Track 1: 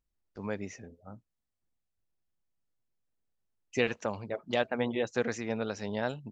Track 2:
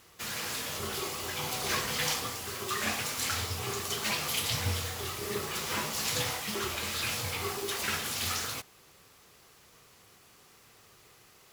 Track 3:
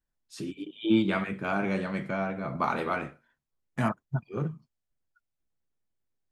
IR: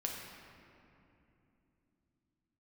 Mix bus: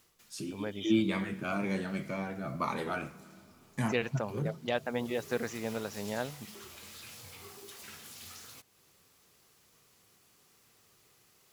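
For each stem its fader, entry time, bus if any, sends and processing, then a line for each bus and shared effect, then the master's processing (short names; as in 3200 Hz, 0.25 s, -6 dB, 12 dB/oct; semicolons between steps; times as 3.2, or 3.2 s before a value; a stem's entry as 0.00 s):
-3.0 dB, 0.15 s, no send, dry
-11.0 dB, 0.00 s, send -23 dB, high shelf 3800 Hz +6.5 dB; compressor 2:1, threshold -43 dBFS, peak gain reduction 11 dB; bell 210 Hz +4.5 dB 2 oct; auto duck -19 dB, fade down 0.35 s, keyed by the third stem
-4.5 dB, 0.00 s, send -14.5 dB, high shelf 5000 Hz +10 dB; cascading phaser falling 1.9 Hz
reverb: on, RT60 2.9 s, pre-delay 5 ms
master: dry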